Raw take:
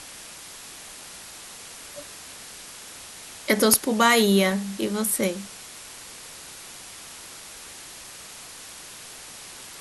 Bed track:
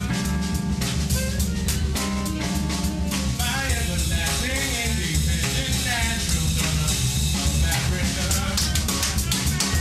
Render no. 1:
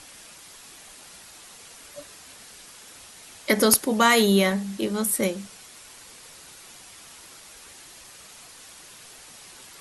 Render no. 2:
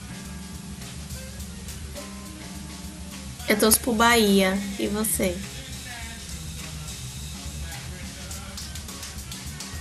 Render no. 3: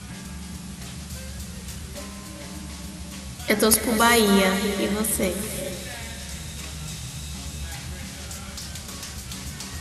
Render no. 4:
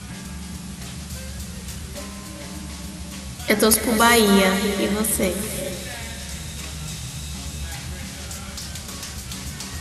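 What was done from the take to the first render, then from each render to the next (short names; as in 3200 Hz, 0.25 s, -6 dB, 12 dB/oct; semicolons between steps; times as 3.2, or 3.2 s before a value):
denoiser 6 dB, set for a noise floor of -42 dBFS
add bed track -13.5 dB
split-band echo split 410 Hz, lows 84 ms, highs 0.274 s, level -13.5 dB; non-linear reverb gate 0.48 s rising, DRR 8 dB
gain +2.5 dB; limiter -2 dBFS, peak gain reduction 2 dB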